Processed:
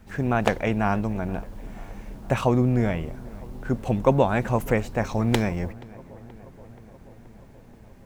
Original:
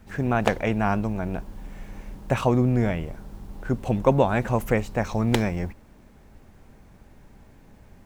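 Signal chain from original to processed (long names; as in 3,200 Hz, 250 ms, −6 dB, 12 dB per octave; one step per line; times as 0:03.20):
feedback echo with a low-pass in the loop 478 ms, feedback 74%, low-pass 2,100 Hz, level −21.5 dB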